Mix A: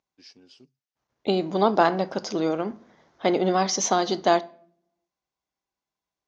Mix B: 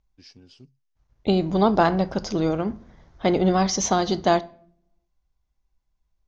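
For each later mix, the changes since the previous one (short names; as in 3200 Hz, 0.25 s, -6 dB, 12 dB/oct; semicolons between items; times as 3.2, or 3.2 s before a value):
master: remove HPF 270 Hz 12 dB/oct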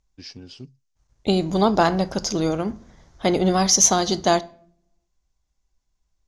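first voice +9.5 dB; second voice: remove air absorption 170 m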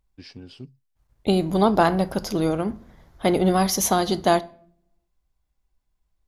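master: remove synth low-pass 6300 Hz, resonance Q 3.8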